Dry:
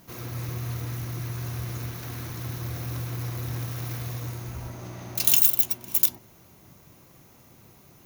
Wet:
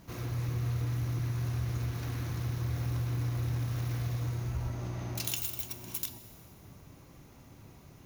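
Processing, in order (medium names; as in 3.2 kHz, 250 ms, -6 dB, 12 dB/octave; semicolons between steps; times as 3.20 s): treble shelf 10 kHz -10.5 dB; compression 2:1, threshold -34 dBFS, peak gain reduction 8.5 dB; bass shelf 100 Hz +10 dB; reverberation RT60 1.9 s, pre-delay 4 ms, DRR 10.5 dB; trim -2 dB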